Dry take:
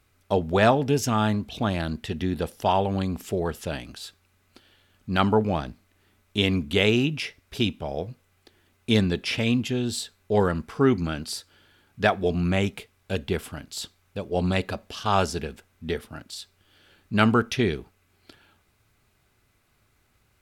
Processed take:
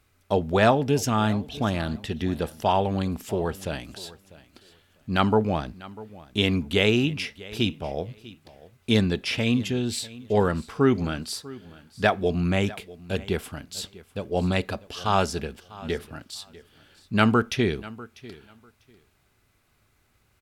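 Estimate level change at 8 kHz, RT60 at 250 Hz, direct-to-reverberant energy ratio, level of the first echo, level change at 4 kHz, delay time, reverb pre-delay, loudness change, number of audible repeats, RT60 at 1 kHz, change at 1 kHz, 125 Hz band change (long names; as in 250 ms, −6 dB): 0.0 dB, no reverb audible, no reverb audible, −19.5 dB, 0.0 dB, 646 ms, no reverb audible, 0.0 dB, 2, no reverb audible, 0.0 dB, 0.0 dB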